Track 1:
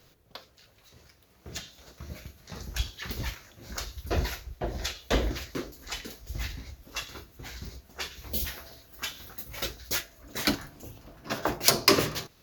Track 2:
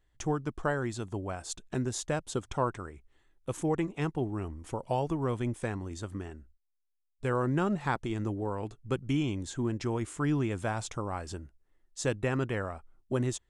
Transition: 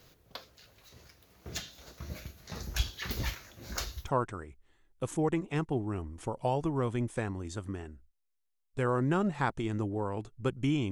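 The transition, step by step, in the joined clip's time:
track 1
4.04 switch to track 2 from 2.5 s, crossfade 0.12 s

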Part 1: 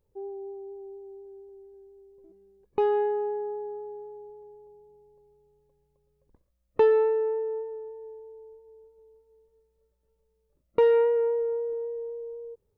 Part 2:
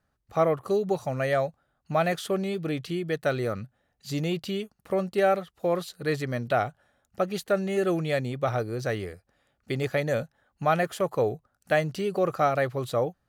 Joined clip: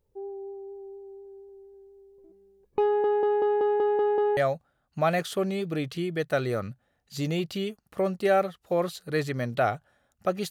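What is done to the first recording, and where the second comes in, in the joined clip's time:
part 1
2.85 stutter in place 0.19 s, 8 plays
4.37 switch to part 2 from 1.3 s

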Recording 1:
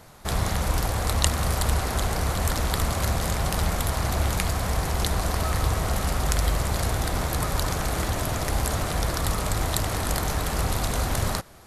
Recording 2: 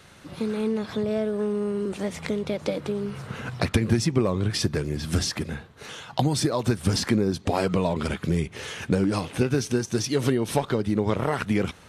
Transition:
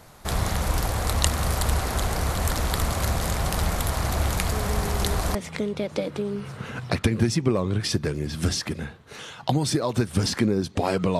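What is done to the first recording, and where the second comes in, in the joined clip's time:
recording 1
4.52 add recording 2 from 1.22 s 0.83 s -8 dB
5.35 switch to recording 2 from 2.05 s

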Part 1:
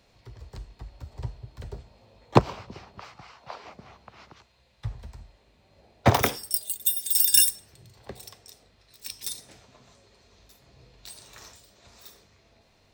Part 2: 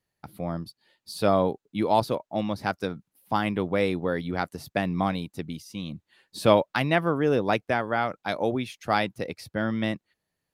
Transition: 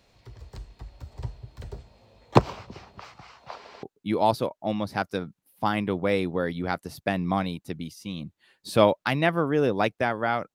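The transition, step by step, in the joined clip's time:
part 1
3.56 stutter in place 0.09 s, 3 plays
3.83 switch to part 2 from 1.52 s

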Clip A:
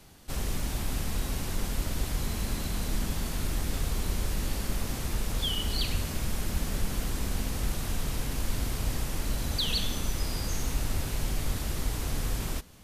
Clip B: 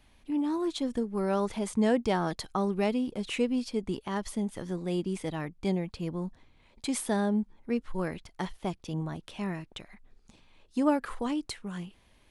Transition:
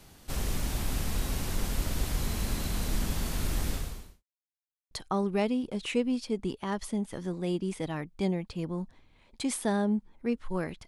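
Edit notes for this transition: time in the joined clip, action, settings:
clip A
3.69–4.24 fade out quadratic
4.24–4.91 mute
4.91 switch to clip B from 2.35 s

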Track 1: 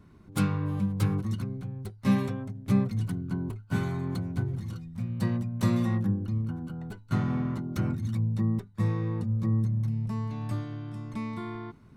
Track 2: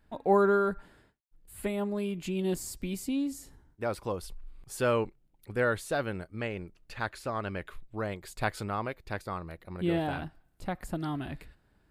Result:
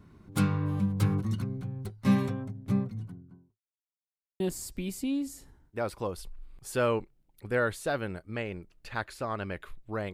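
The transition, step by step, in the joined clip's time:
track 1
2.15–3.6 studio fade out
3.6–4.4 mute
4.4 switch to track 2 from 2.45 s

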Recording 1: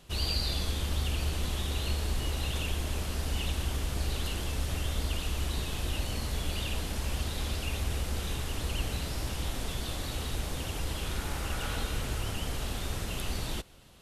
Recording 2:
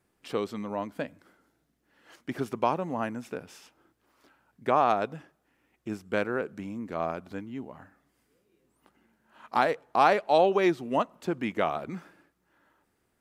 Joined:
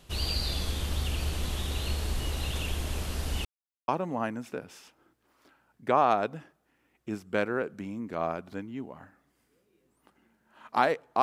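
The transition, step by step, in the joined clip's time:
recording 1
3.45–3.88 mute
3.88 switch to recording 2 from 2.67 s

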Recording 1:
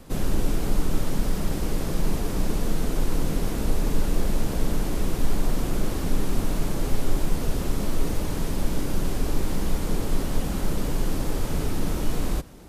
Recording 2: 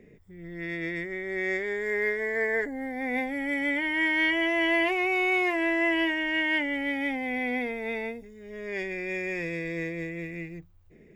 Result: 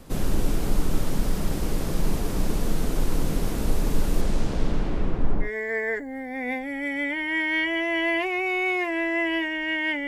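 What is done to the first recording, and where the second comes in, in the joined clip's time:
recording 1
4.21–5.5 LPF 9900 Hz -> 1100 Hz
5.45 switch to recording 2 from 2.11 s, crossfade 0.10 s

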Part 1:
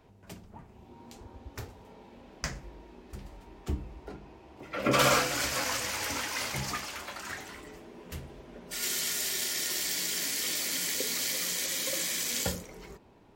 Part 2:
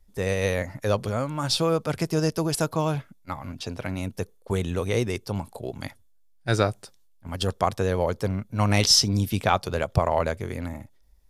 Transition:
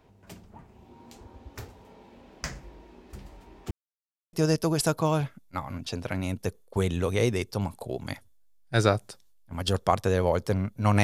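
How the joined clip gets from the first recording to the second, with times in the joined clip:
part 1
3.71–4.33 mute
4.33 switch to part 2 from 2.07 s

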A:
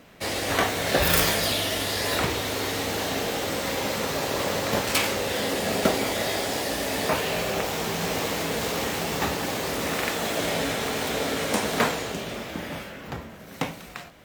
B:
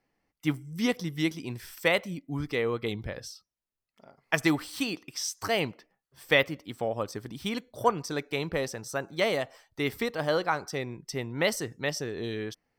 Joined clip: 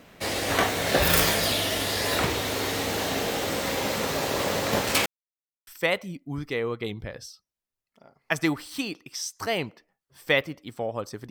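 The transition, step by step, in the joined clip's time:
A
5.06–5.67 mute
5.67 switch to B from 1.69 s

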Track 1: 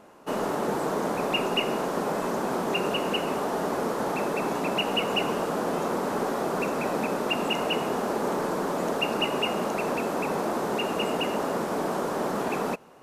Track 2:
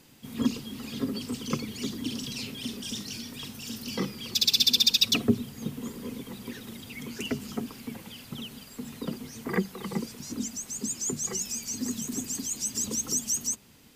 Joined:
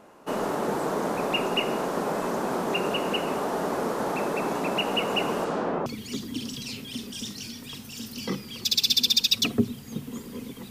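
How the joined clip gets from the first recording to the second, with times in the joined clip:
track 1
5.44–5.86 LPF 9400 Hz -> 1300 Hz
5.86 switch to track 2 from 1.56 s

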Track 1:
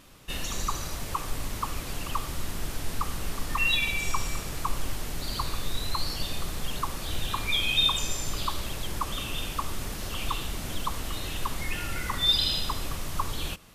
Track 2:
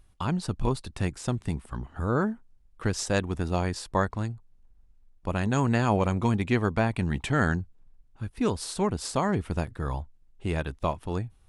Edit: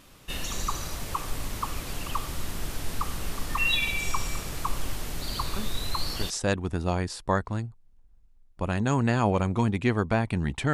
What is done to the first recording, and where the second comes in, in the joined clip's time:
track 1
5.56 add track 2 from 2.22 s 0.74 s -8.5 dB
6.3 switch to track 2 from 2.96 s

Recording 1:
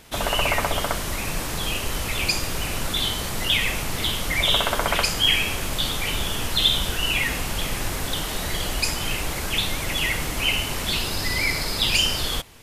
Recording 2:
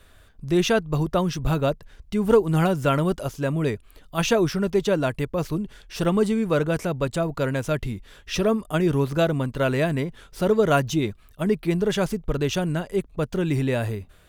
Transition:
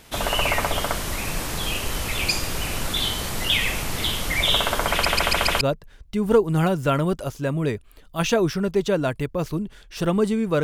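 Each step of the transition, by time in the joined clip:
recording 1
4.91 stutter in place 0.14 s, 5 plays
5.61 switch to recording 2 from 1.6 s

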